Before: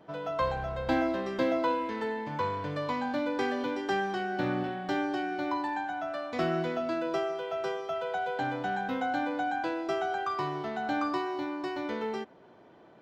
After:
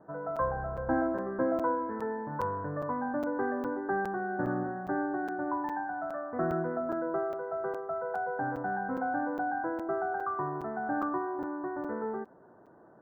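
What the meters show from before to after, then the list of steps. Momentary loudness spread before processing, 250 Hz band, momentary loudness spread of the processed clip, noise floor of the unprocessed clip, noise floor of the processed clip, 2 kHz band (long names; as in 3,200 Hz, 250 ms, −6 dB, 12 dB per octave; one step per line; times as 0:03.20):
5 LU, −1.0 dB, 5 LU, −56 dBFS, −57 dBFS, −2.5 dB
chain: Butterworth low-pass 1,700 Hz 72 dB per octave
regular buffer underruns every 0.41 s, samples 256, zero, from 0:00.36
level −1 dB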